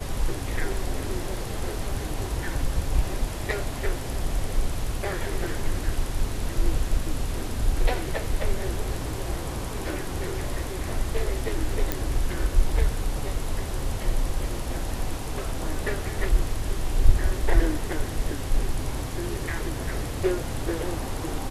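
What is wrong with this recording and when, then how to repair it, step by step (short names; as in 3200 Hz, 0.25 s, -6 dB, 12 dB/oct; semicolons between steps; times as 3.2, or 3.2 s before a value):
11.92 pop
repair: de-click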